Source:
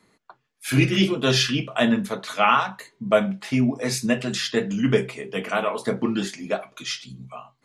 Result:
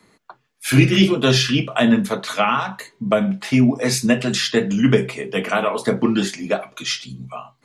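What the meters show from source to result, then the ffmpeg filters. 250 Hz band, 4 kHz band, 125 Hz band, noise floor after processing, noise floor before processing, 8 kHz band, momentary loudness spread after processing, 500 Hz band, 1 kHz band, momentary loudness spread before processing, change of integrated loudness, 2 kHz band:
+5.5 dB, +4.0 dB, +6.0 dB, -65 dBFS, -70 dBFS, +5.0 dB, 10 LU, +3.5 dB, +1.0 dB, 12 LU, +4.5 dB, +3.5 dB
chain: -filter_complex "[0:a]acrossover=split=320[a][b];[b]acompressor=threshold=-21dB:ratio=6[c];[a][c]amix=inputs=2:normalize=0,volume=6dB"

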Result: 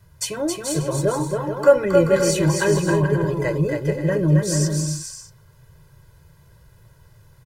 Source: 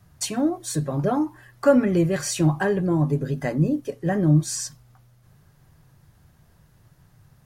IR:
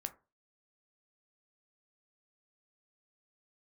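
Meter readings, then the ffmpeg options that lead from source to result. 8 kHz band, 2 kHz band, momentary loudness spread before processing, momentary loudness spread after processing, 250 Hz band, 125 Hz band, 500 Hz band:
+4.0 dB, +5.0 dB, 9 LU, 9 LU, -0.5 dB, +2.5 dB, +6.5 dB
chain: -filter_complex "[0:a]bandreject=f=750:w=17,aecho=1:1:2:0.88,asplit=2[a][b];[b]aecho=0:1:270|432|529.2|587.5|622.5:0.631|0.398|0.251|0.158|0.1[c];[a][c]amix=inputs=2:normalize=0"

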